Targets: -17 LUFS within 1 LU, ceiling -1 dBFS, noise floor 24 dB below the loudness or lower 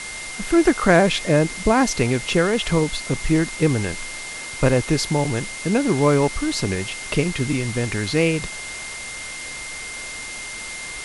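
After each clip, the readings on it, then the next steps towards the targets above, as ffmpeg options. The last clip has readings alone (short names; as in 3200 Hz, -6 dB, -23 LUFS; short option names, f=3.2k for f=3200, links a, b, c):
steady tone 2100 Hz; tone level -33 dBFS; noise floor -33 dBFS; noise floor target -46 dBFS; loudness -21.5 LUFS; peak -2.0 dBFS; loudness target -17.0 LUFS
-> -af "bandreject=f=2.1k:w=30"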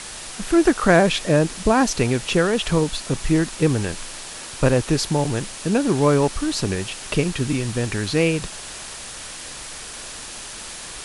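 steady tone none; noise floor -36 dBFS; noise floor target -45 dBFS
-> -af "afftdn=nr=9:nf=-36"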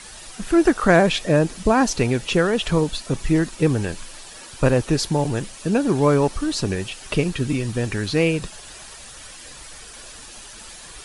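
noise floor -41 dBFS; noise floor target -45 dBFS
-> -af "afftdn=nr=6:nf=-41"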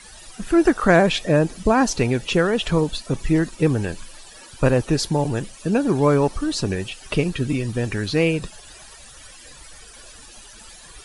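noise floor -44 dBFS; noise floor target -45 dBFS
-> -af "afftdn=nr=6:nf=-44"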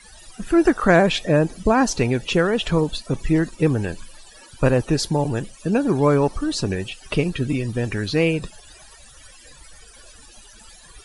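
noise floor -47 dBFS; loudness -21.0 LUFS; peak -2.0 dBFS; loudness target -17.0 LUFS
-> -af "volume=4dB,alimiter=limit=-1dB:level=0:latency=1"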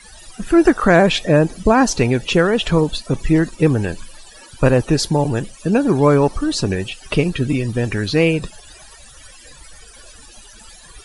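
loudness -17.0 LUFS; peak -1.0 dBFS; noise floor -43 dBFS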